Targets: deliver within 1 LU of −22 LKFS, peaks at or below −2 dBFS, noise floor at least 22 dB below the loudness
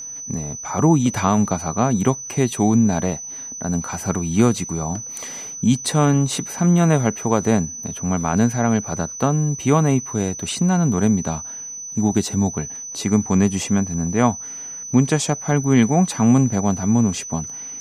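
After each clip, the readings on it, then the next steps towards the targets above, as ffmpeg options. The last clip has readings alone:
interfering tone 6,000 Hz; level of the tone −30 dBFS; integrated loudness −20.0 LKFS; sample peak −3.0 dBFS; target loudness −22.0 LKFS
→ -af "bandreject=frequency=6000:width=30"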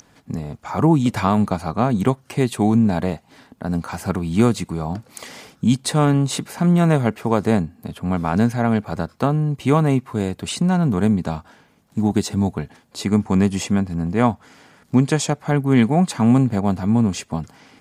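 interfering tone none found; integrated loudness −20.0 LKFS; sample peak −3.0 dBFS; target loudness −22.0 LKFS
→ -af "volume=-2dB"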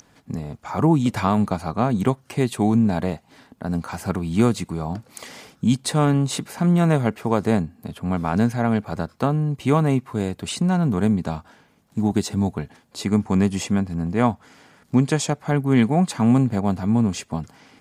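integrated loudness −22.0 LKFS; sample peak −5.0 dBFS; background noise floor −59 dBFS

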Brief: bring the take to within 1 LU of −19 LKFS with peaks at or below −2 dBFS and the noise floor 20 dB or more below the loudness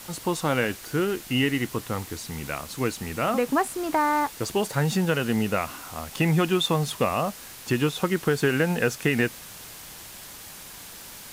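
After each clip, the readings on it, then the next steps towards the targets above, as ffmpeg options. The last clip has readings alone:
background noise floor −43 dBFS; target noise floor −46 dBFS; integrated loudness −25.5 LKFS; sample peak −10.5 dBFS; target loudness −19.0 LKFS
→ -af "afftdn=noise_reduction=6:noise_floor=-43"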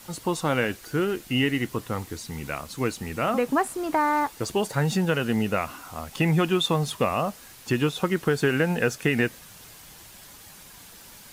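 background noise floor −48 dBFS; integrated loudness −25.5 LKFS; sample peak −10.5 dBFS; target loudness −19.0 LKFS
→ -af "volume=6.5dB"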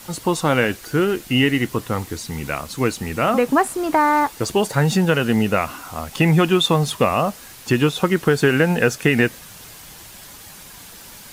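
integrated loudness −19.0 LKFS; sample peak −4.0 dBFS; background noise floor −41 dBFS

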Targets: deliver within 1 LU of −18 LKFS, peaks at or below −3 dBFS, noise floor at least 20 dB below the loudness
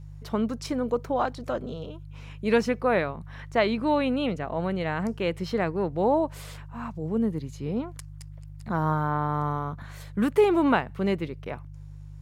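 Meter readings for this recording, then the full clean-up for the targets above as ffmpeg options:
mains hum 50 Hz; hum harmonics up to 150 Hz; level of the hum −40 dBFS; integrated loudness −27.0 LKFS; sample peak −9.5 dBFS; target loudness −18.0 LKFS
→ -af "bandreject=frequency=50:width_type=h:width=4,bandreject=frequency=100:width_type=h:width=4,bandreject=frequency=150:width_type=h:width=4"
-af "volume=9dB,alimiter=limit=-3dB:level=0:latency=1"

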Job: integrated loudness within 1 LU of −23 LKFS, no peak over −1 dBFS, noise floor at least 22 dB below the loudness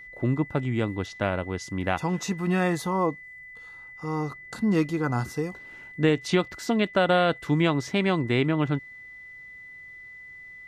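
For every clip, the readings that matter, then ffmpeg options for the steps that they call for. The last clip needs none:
interfering tone 2,000 Hz; level of the tone −42 dBFS; integrated loudness −26.0 LKFS; sample peak −10.0 dBFS; target loudness −23.0 LKFS
→ -af "bandreject=frequency=2000:width=30"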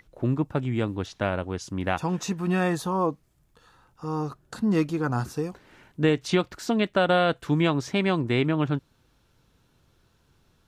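interfering tone none found; integrated loudness −26.5 LKFS; sample peak −10.0 dBFS; target loudness −23.0 LKFS
→ -af "volume=3.5dB"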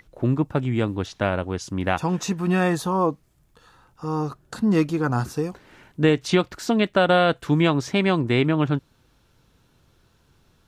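integrated loudness −23.0 LKFS; sample peak −6.5 dBFS; background noise floor −62 dBFS

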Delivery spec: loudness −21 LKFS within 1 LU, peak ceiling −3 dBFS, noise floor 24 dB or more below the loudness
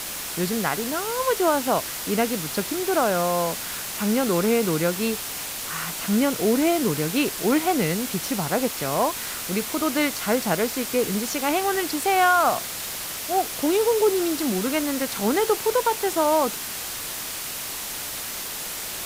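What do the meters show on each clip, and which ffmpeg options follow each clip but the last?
background noise floor −32 dBFS; target noise floor −48 dBFS; integrated loudness −23.5 LKFS; sample peak −7.5 dBFS; target loudness −21.0 LKFS
→ -af "afftdn=noise_reduction=16:noise_floor=-32"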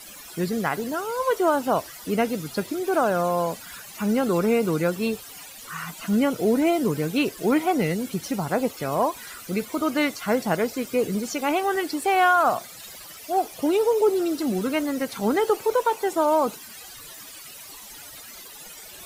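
background noise floor −43 dBFS; target noise floor −48 dBFS
→ -af "afftdn=noise_reduction=6:noise_floor=-43"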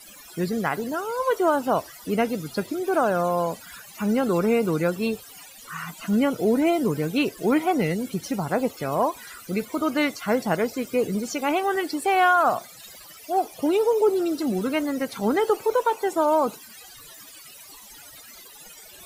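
background noise floor −46 dBFS; target noise floor −48 dBFS
→ -af "afftdn=noise_reduction=6:noise_floor=-46"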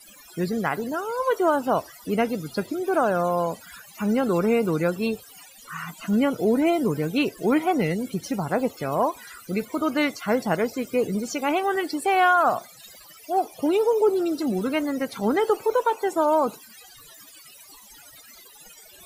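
background noise floor −49 dBFS; integrated loudness −24.0 LKFS; sample peak −8.5 dBFS; target loudness −21.0 LKFS
→ -af "volume=3dB"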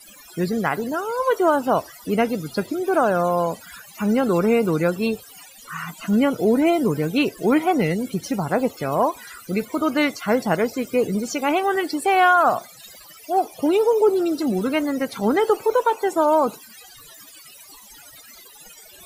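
integrated loudness −21.0 LKFS; sample peak −5.5 dBFS; background noise floor −46 dBFS

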